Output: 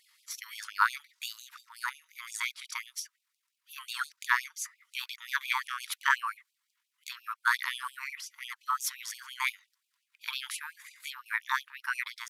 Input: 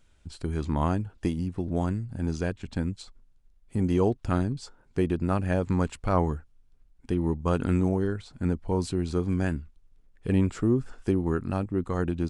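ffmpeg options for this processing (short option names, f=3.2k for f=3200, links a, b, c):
-af "asetrate=60591,aresample=44100,atempo=0.727827,asuperstop=centerf=690:order=8:qfactor=6.1,afftfilt=real='re*gte(b*sr/1024,860*pow(2400/860,0.5+0.5*sin(2*PI*5.7*pts/sr)))':imag='im*gte(b*sr/1024,860*pow(2400/860,0.5+0.5*sin(2*PI*5.7*pts/sr)))':win_size=1024:overlap=0.75,volume=8dB"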